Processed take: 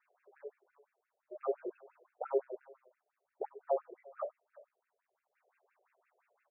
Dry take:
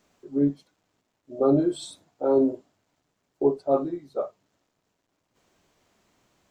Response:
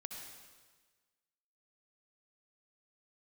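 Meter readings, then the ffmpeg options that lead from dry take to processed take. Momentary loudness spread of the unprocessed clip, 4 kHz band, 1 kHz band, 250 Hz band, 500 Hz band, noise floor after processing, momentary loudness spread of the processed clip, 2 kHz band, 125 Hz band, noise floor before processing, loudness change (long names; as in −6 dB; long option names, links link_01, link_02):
18 LU, below −35 dB, −9.0 dB, −27.0 dB, −13.0 dB, below −85 dBFS, 16 LU, can't be measured, below −40 dB, −77 dBFS, −14.0 dB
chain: -filter_complex "[0:a]acrossover=split=150|3000[link_01][link_02][link_03];[link_02]alimiter=limit=-18.5dB:level=0:latency=1:release=204[link_04];[link_01][link_04][link_03]amix=inputs=3:normalize=0,asplit=2[link_05][link_06];[link_06]adelay=370,highpass=300,lowpass=3400,asoftclip=type=hard:threshold=-26dB,volume=-21dB[link_07];[link_05][link_07]amix=inputs=2:normalize=0,aeval=exprs='0.15*(cos(1*acos(clip(val(0)/0.15,-1,1)))-cos(1*PI/2))+0.0015*(cos(7*acos(clip(val(0)/0.15,-1,1)))-cos(7*PI/2))':channel_layout=same,afftfilt=real='re*between(b*sr/1024,500*pow(2000/500,0.5+0.5*sin(2*PI*5.8*pts/sr))/1.41,500*pow(2000/500,0.5+0.5*sin(2*PI*5.8*pts/sr))*1.41)':imag='im*between(b*sr/1024,500*pow(2000/500,0.5+0.5*sin(2*PI*5.8*pts/sr))/1.41,500*pow(2000/500,0.5+0.5*sin(2*PI*5.8*pts/sr))*1.41)':win_size=1024:overlap=0.75,volume=-1dB"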